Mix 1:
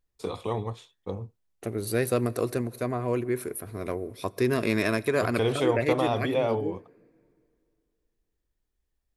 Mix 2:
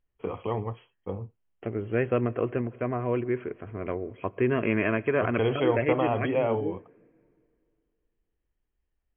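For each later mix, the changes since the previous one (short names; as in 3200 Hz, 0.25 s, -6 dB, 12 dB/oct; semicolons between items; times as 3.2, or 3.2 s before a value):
master: add brick-wall FIR low-pass 3300 Hz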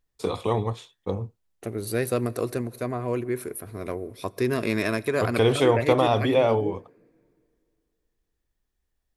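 first voice +5.5 dB; master: remove brick-wall FIR low-pass 3300 Hz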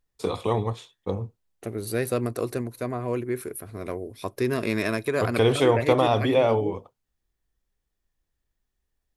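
reverb: off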